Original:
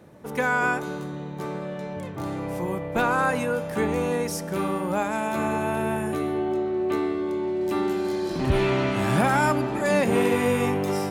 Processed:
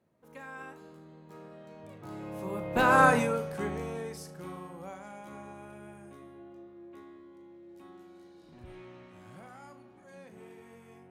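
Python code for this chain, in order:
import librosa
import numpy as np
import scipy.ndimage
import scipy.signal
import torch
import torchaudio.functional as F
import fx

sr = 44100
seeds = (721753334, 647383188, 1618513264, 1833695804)

y = fx.doppler_pass(x, sr, speed_mps=23, closest_m=3.8, pass_at_s=3.01)
y = fx.room_early_taps(y, sr, ms=(38, 79), db=(-10.0, -17.5))
y = y * librosa.db_to_amplitude(2.0)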